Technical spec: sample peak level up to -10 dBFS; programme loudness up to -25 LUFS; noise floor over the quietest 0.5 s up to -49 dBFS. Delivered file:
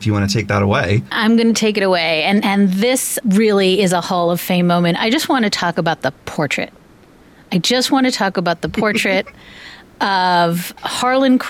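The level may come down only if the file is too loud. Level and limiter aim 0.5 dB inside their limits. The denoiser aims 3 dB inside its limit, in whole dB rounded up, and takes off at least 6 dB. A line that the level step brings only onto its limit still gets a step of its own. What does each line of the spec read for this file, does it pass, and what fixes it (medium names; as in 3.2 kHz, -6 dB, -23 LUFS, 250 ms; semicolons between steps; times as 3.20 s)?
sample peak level -5.0 dBFS: fail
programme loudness -15.5 LUFS: fail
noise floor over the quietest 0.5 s -46 dBFS: fail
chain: trim -10 dB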